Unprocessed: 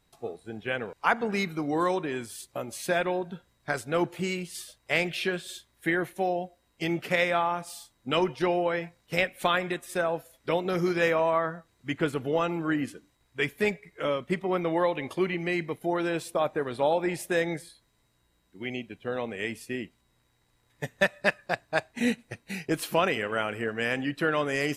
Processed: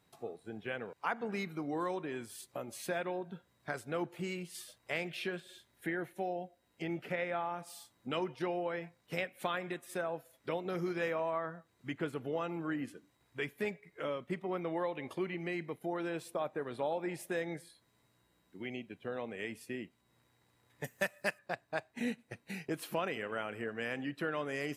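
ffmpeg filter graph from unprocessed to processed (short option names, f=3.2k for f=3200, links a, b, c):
-filter_complex "[0:a]asettb=1/sr,asplit=3[a][b][c];[a]atrim=end=5.404[d];[b]atrim=start=5.4:end=7.59,asetpts=PTS-STARTPTS,afade=t=in:d=0.004:c=qsin,afade=t=out:st=2.186:d=0.004:c=qsin,bandreject=f=1.1k:w=7.8,acrossover=split=2900[e][f];[f]acompressor=threshold=-49dB:ratio=4:attack=1:release=60[g];[e][g]amix=inputs=2:normalize=0[h];[c]atrim=start=7.586[i];[d][h]acrossfade=d=0.004:c1=hsin:c2=qsin[j];[j][i]acrossfade=d=0.004:c1=qsin:c2=hsin,asettb=1/sr,asplit=3[k][l][m];[k]atrim=end=20.844[n];[l]atrim=start=20.84:end=21.39,asetpts=PTS-STARTPTS,afade=t=in:d=0.004:c=qsin,afade=t=out:st=0.546:d=0.004:c=qsin,aemphasis=mode=production:type=75kf,bandreject=f=3.7k:w=6[o];[m]atrim=start=21.386[p];[n][o]acrossfade=d=0.004:c1=hsin:c2=qsin[q];[q][p]acrossfade=d=0.004:c1=qsin:c2=hsin,highpass=100,equalizer=f=6.2k:t=o:w=2.2:g=-4,acompressor=threshold=-50dB:ratio=1.5"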